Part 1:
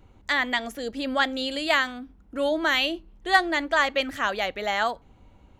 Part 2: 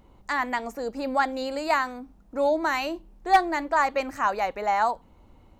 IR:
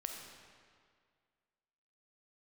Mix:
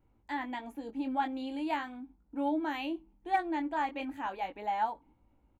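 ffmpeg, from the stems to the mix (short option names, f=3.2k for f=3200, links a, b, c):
-filter_complex "[0:a]flanger=delay=17.5:depth=5.4:speed=0.39,equalizer=f=5.2k:w=0.87:g=-12.5,volume=-12dB[a];[1:a]agate=range=-13dB:threshold=-49dB:ratio=16:detection=peak,asplit=3[b][c][d];[b]bandpass=f=300:t=q:w=8,volume=0dB[e];[c]bandpass=f=870:t=q:w=8,volume=-6dB[f];[d]bandpass=f=2.24k:t=q:w=8,volume=-9dB[g];[e][f][g]amix=inputs=3:normalize=0,adelay=0.5,volume=1dB[h];[a][h]amix=inputs=2:normalize=0"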